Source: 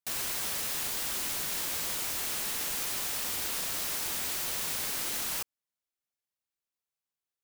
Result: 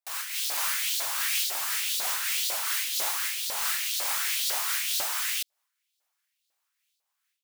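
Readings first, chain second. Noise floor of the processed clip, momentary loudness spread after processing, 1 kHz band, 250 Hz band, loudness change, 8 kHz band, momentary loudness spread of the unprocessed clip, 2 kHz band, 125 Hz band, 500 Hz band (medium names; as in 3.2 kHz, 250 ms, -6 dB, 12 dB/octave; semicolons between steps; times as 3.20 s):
-81 dBFS, 3 LU, +5.5 dB, under -10 dB, +4.0 dB, +4.0 dB, 0 LU, +6.5 dB, under -20 dB, -1.0 dB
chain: level rider gain up to 14.5 dB; wavefolder -22 dBFS; LFO high-pass saw up 2 Hz 590–4400 Hz; random flutter of the level, depth 60%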